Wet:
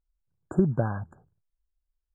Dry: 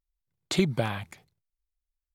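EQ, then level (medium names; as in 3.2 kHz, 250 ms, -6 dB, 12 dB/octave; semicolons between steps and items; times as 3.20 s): brick-wall FIR band-stop 1.7–6.9 kHz; tape spacing loss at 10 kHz 28 dB; bass shelf 120 Hz +5 dB; +1.5 dB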